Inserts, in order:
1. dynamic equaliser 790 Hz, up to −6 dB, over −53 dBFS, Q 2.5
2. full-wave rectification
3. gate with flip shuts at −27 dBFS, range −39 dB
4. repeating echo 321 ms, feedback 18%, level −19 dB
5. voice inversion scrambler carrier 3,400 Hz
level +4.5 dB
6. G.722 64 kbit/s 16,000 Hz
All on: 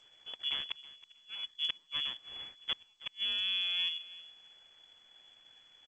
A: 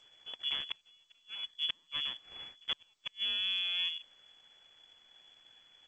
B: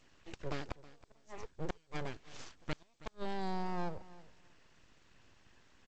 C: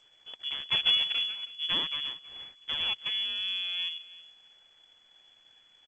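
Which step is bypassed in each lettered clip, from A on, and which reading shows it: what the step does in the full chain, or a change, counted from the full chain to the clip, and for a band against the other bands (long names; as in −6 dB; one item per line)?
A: 4, change in momentary loudness spread −3 LU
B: 5, 4 kHz band −34.5 dB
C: 3, 500 Hz band +3.0 dB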